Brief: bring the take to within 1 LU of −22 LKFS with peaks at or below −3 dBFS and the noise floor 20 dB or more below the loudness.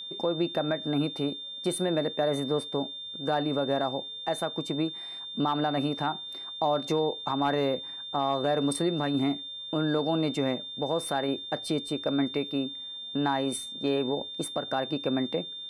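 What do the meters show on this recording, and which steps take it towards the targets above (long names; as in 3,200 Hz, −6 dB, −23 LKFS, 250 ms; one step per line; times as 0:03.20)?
interfering tone 3,600 Hz; level of the tone −37 dBFS; integrated loudness −29.5 LKFS; sample peak −16.0 dBFS; target loudness −22.0 LKFS
→ notch filter 3,600 Hz, Q 30
level +7.5 dB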